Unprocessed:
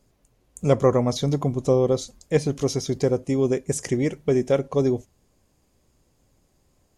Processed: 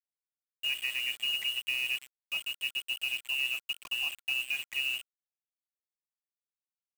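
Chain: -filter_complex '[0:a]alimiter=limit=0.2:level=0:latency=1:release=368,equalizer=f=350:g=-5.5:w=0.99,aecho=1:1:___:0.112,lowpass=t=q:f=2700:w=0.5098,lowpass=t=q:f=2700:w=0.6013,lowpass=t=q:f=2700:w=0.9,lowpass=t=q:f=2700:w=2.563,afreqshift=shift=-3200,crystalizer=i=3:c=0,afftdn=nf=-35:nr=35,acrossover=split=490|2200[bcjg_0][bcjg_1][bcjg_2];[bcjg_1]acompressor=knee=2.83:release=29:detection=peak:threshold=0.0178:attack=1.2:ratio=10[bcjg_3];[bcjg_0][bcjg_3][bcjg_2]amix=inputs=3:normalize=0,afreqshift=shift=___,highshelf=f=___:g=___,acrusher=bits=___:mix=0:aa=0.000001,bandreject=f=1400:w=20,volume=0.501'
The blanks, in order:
119, -190, 2200, -6, 5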